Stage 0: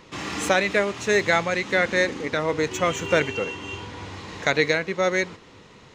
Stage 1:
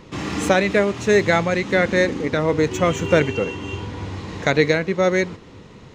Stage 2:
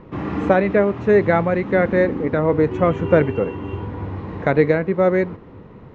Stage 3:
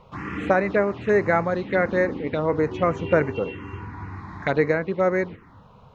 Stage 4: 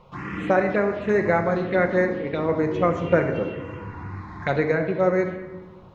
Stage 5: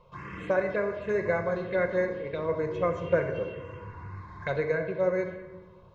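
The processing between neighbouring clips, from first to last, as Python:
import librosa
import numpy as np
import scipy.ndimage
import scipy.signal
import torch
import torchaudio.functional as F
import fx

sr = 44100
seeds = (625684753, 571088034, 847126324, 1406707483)

y1 = fx.low_shelf(x, sr, hz=480.0, db=10.0)
y2 = scipy.signal.sosfilt(scipy.signal.butter(2, 1400.0, 'lowpass', fs=sr, output='sos'), y1)
y2 = y2 * librosa.db_to_amplitude(2.0)
y3 = fx.env_phaser(y2, sr, low_hz=280.0, high_hz=3300.0, full_db=-13.0)
y3 = fx.tilt_shelf(y3, sr, db=-7.0, hz=1100.0)
y4 = fx.room_shoebox(y3, sr, seeds[0], volume_m3=880.0, walls='mixed', distance_m=0.9)
y4 = y4 * librosa.db_to_amplitude(-1.5)
y5 = y4 + 0.6 * np.pad(y4, (int(1.9 * sr / 1000.0), 0))[:len(y4)]
y5 = y5 * librosa.db_to_amplitude(-8.5)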